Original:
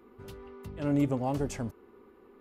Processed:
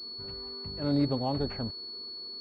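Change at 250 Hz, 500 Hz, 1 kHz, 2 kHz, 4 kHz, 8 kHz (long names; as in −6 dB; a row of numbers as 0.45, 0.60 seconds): 0.0 dB, 0.0 dB, 0.0 dB, −2.5 dB, +19.5 dB, below −20 dB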